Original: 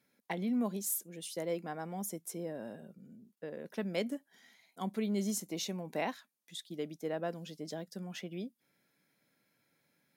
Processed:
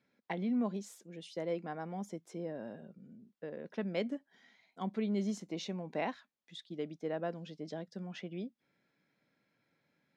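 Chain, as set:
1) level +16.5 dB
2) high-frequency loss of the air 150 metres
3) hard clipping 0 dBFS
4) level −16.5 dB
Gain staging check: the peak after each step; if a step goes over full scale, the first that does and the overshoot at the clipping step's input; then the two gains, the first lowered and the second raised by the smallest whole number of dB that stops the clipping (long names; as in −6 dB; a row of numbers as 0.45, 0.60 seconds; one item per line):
−4.0, −5.5, −5.5, −22.0 dBFS
no step passes full scale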